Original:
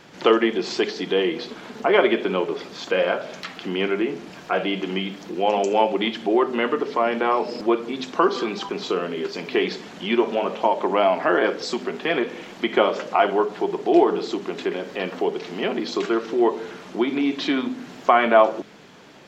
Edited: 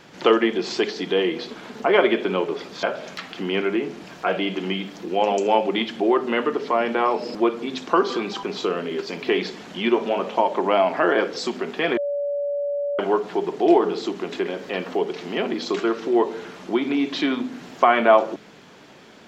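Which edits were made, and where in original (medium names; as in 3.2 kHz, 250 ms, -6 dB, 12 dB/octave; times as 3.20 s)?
2.83–3.09 s: delete
12.23–13.25 s: bleep 573 Hz -22 dBFS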